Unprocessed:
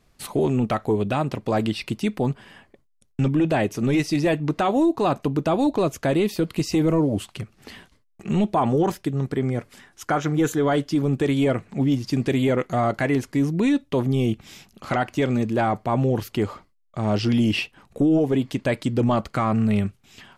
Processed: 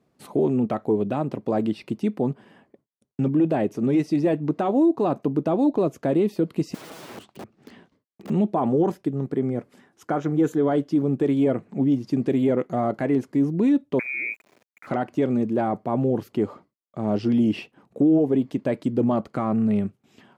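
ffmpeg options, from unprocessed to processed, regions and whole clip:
ffmpeg -i in.wav -filter_complex "[0:a]asettb=1/sr,asplit=3[link_01][link_02][link_03];[link_01]atrim=end=6.744[link_04];[link_02]atrim=start=6.74:end=8.3,asetpts=PTS-STARTPTS,afade=type=in:duration=0.004:curve=qsin,afade=type=out:start_time=1.556:duration=0.004:curve=qsin,lowpass=6700,aeval=exprs='(mod(28.2*val(0)+1,2)-1)/28.2':channel_layout=same[link_05];[link_03]atrim=start=8.296[link_06];[link_04][link_05]acrossfade=duration=0.004:curve1=hsin:curve2=qsin[link_07];[link_07][link_06]acrossfade=duration=0.004:curve1=qsin:curve2=hsin,asettb=1/sr,asplit=3[link_08][link_09][link_10];[link_08]atrim=end=13.994[link_11];[link_09]atrim=start=13.99:end=14.87,asetpts=PTS-STARTPTS,afade=type=in:duration=0.004:curve=qsin,afade=type=out:start_time=0.876:duration=0.004:curve=qsin,equalizer=frequency=570:width_type=o:width=1.7:gain=7,lowpass=frequency=2200:width_type=q:width=0.5098,lowpass=frequency=2200:width_type=q:width=0.6013,lowpass=frequency=2200:width_type=q:width=0.9,lowpass=frequency=2200:width_type=q:width=2.563,afreqshift=-2600,aeval=exprs='val(0)*gte(abs(val(0)),0.00794)':channel_layout=same[link_12];[link_10]atrim=start=14.866[link_13];[link_11][link_12]acrossfade=duration=0.004:curve1=hsin:curve2=qsin[link_14];[link_14][link_13]acrossfade=duration=0.004:curve1=qsin:curve2=hsin,highpass=200,tiltshelf=frequency=970:gain=8.5,volume=-5dB" out.wav

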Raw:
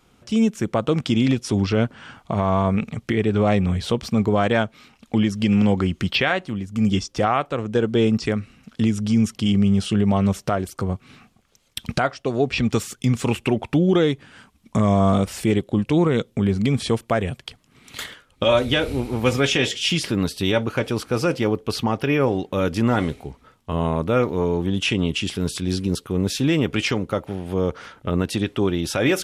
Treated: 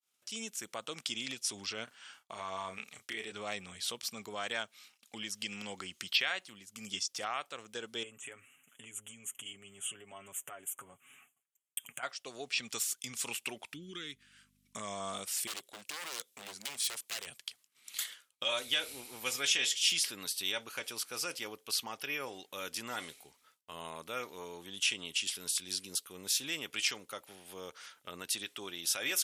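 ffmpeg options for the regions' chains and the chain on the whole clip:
ffmpeg -i in.wav -filter_complex "[0:a]asettb=1/sr,asplit=3[link_01][link_02][link_03];[link_01]atrim=end=1.844[link_04];[link_02]atrim=start=1.84:end=3.32,asetpts=PTS-STARTPTS,afade=type=in:duration=0.004:curve=qsin,afade=type=out:start_time=1.476:duration=0.004:curve=qsin,agate=range=-33dB:threshold=-43dB:ratio=3:release=100:detection=peak,equalizer=frequency=160:width=1.1:gain=-5.5,asplit=2[link_05][link_06];[link_06]adelay=32,volume=-7dB[link_07];[link_05][link_07]amix=inputs=2:normalize=0,atrim=end_sample=65268[link_08];[link_03]atrim=start=3.316[link_09];[link_04][link_08]acrossfade=duration=0.004:curve1=hsin:curve2=qsin[link_10];[link_10][link_09]acrossfade=duration=0.004:curve1=qsin:curve2=hsin,asettb=1/sr,asplit=3[link_11][link_12][link_13];[link_11]atrim=end=8.034[link_14];[link_12]atrim=start=8.03:end=12.03,asetpts=PTS-STARTPTS,afade=type=in:duration=0.004:curve=qsin,afade=type=out:start_time=3.996:duration=0.004:curve=qsin,aecho=1:1:7.2:0.69,atrim=end_sample=176400,acompressor=threshold=-28dB:ratio=2.5:attack=3.2:release=140:knee=1:detection=peak,asuperstop=centerf=4700:order=8:qfactor=1.3[link_15];[link_13]atrim=start=12.026[link_16];[link_14][link_15]acrossfade=duration=0.004:curve1=hsin:curve2=qsin[link_17];[link_17][link_16]acrossfade=duration=0.004:curve1=qsin:curve2=hsin,asettb=1/sr,asplit=3[link_18][link_19][link_20];[link_18]atrim=end=13.734[link_21];[link_19]atrim=start=13.73:end=14.76,asetpts=PTS-STARTPTS,afade=type=in:duration=0.004:curve=qsin,afade=type=out:start_time=1.026:duration=0.004:curve=qsin,asuperstop=centerf=680:order=4:qfactor=0.62,highshelf=frequency=2500:gain=-8.5,aeval=exprs='val(0)+0.0178*(sin(2*PI*50*n/s)+sin(2*PI*2*50*n/s)/2+sin(2*PI*3*50*n/s)/3+sin(2*PI*4*50*n/s)/4+sin(2*PI*5*50*n/s)/5)':channel_layout=same[link_22];[link_20]atrim=start=14.756[link_23];[link_21][link_22]acrossfade=duration=0.004:curve1=hsin:curve2=qsin[link_24];[link_24][link_23]acrossfade=duration=0.004:curve1=qsin:curve2=hsin,asettb=1/sr,asplit=3[link_25][link_26][link_27];[link_25]atrim=end=15.474[link_28];[link_26]atrim=start=15.47:end=17.27,asetpts=PTS-STARTPTS,afade=type=in:duration=0.004:curve=qsin,afade=type=out:start_time=1.796:duration=0.004:curve=qsin,bass=frequency=250:gain=-7,treble=frequency=4000:gain=2,aeval=exprs='0.075*(abs(mod(val(0)/0.075+3,4)-2)-1)':channel_layout=same[link_29];[link_27]atrim=start=17.266[link_30];[link_28][link_29]acrossfade=duration=0.004:curve1=hsin:curve2=qsin[link_31];[link_31][link_30]acrossfade=duration=0.004:curve1=qsin:curve2=hsin,agate=range=-33dB:threshold=-48dB:ratio=3:detection=peak,aderivative" out.wav

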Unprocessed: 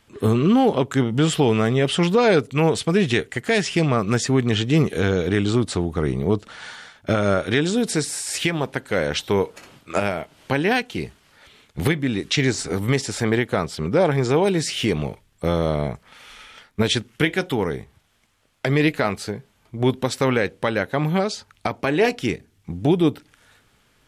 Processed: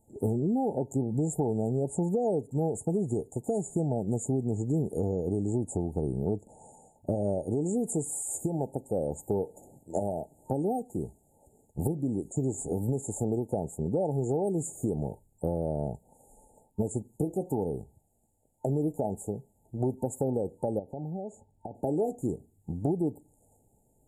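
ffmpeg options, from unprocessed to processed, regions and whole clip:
ffmpeg -i in.wav -filter_complex "[0:a]asettb=1/sr,asplit=3[link_01][link_02][link_03];[link_01]atrim=end=20.794[link_04];[link_02]atrim=start=20.79:end=21.75,asetpts=PTS-STARTPTS,afade=type=in:duration=0.004:curve=qsin,afade=type=out:start_time=0.956:duration=0.004:curve=qsin,lowpass=frequency=2200:poles=1,acompressor=threshold=-32dB:ratio=3:attack=3.2:release=140:knee=1:detection=peak[link_05];[link_03]atrim=start=21.746[link_06];[link_04][link_05]acrossfade=duration=0.004:curve1=hsin:curve2=qsin[link_07];[link_07][link_06]acrossfade=duration=0.004:curve1=qsin:curve2=hsin,afftfilt=real='re*(1-between(b*sr/4096,900,6700))':imag='im*(1-between(b*sr/4096,900,6700))':win_size=4096:overlap=0.75,acompressor=threshold=-21dB:ratio=4,volume=-4.5dB" out.wav

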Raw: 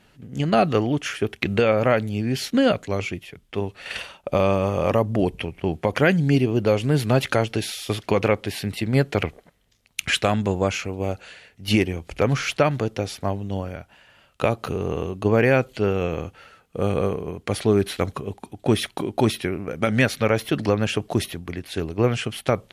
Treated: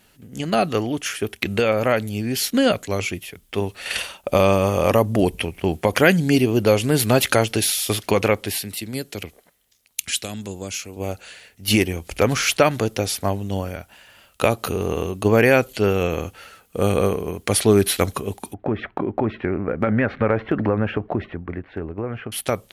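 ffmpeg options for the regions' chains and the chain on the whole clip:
ffmpeg -i in.wav -filter_complex "[0:a]asettb=1/sr,asplit=3[link_01][link_02][link_03];[link_01]atrim=end=8.584[link_04];[link_02]atrim=start=8.58:end=10.97,asetpts=PTS-STARTPTS,afade=type=in:duration=0.004:curve=qsin,afade=type=out:start_time=2.386:duration=0.004:curve=qsin,lowshelf=frequency=270:gain=-8,acrossover=split=390|3000[link_05][link_06][link_07];[link_06]acompressor=threshold=-47dB:ratio=2:attack=3.2:release=140:knee=2.83:detection=peak[link_08];[link_05][link_08][link_07]amix=inputs=3:normalize=0[link_09];[link_03]atrim=start=10.966[link_10];[link_04][link_09]acrossfade=duration=0.004:curve1=hsin:curve2=qsin[link_11];[link_11][link_10]acrossfade=duration=0.004:curve1=qsin:curve2=hsin,asettb=1/sr,asplit=3[link_12][link_13][link_14];[link_12]atrim=end=18.544[link_15];[link_13]atrim=start=18.54:end=22.32,asetpts=PTS-STARTPTS,afade=type=in:duration=0.004:curve=qsin,afade=type=out:start_time=3.776:duration=0.004:curve=qsin,lowpass=frequency=1800:width=0.5412,lowpass=frequency=1800:width=1.3066,bandreject=frequency=690:width=22,acompressor=threshold=-22dB:ratio=4:attack=3.2:release=140:knee=1:detection=peak[link_16];[link_14]atrim=start=22.316[link_17];[link_15][link_16]acrossfade=duration=0.004:curve1=hsin:curve2=qsin[link_18];[link_18][link_17]acrossfade=duration=0.004:curve1=qsin:curve2=hsin,aemphasis=mode=production:type=50fm,dynaudnorm=framelen=200:gausssize=17:maxgain=11.5dB,equalizer=frequency=140:width=4.7:gain=-7,volume=-1dB" out.wav

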